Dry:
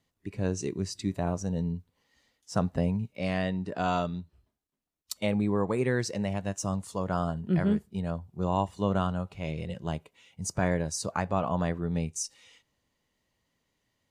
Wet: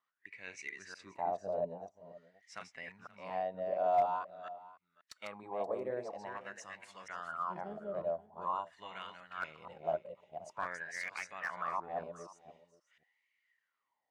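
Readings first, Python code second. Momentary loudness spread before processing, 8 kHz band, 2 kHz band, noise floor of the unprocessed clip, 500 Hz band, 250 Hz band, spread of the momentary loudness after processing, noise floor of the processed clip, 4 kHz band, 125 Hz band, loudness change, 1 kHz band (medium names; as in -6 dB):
8 LU, -18.5 dB, -4.0 dB, -80 dBFS, -6.0 dB, -23.5 dB, 14 LU, -85 dBFS, -12.5 dB, -27.0 dB, -9.0 dB, -2.5 dB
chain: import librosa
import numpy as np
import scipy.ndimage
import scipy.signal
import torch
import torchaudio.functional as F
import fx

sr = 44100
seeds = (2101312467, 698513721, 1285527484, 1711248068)

p1 = fx.reverse_delay(x, sr, ms=236, wet_db=-4.0)
p2 = fx.high_shelf(p1, sr, hz=2000.0, db=8.0)
p3 = fx.rider(p2, sr, range_db=3, speed_s=0.5)
p4 = p2 + F.gain(torch.from_numpy(p3), 0.0).numpy()
p5 = fx.wah_lfo(p4, sr, hz=0.47, low_hz=590.0, high_hz=2200.0, q=9.7)
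p6 = p5 + fx.echo_single(p5, sr, ms=528, db=-18.5, dry=0)
y = fx.slew_limit(p6, sr, full_power_hz=52.0)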